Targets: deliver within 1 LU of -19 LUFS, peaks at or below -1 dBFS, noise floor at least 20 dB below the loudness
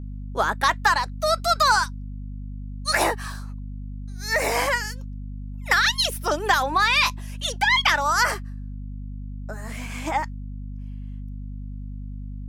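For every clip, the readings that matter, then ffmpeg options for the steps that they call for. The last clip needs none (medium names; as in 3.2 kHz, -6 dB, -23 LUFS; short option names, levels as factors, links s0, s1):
hum 50 Hz; highest harmonic 250 Hz; hum level -31 dBFS; loudness -22.0 LUFS; peak level -6.0 dBFS; loudness target -19.0 LUFS
-> -af "bandreject=f=50:t=h:w=6,bandreject=f=100:t=h:w=6,bandreject=f=150:t=h:w=6,bandreject=f=200:t=h:w=6,bandreject=f=250:t=h:w=6"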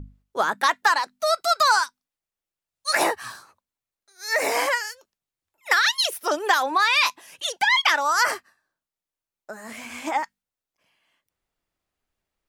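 hum not found; loudness -21.5 LUFS; peak level -6.0 dBFS; loudness target -19.0 LUFS
-> -af "volume=1.33"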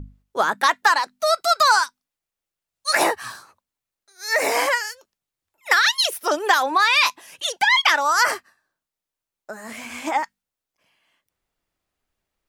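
loudness -19.0 LUFS; peak level -3.5 dBFS; noise floor -87 dBFS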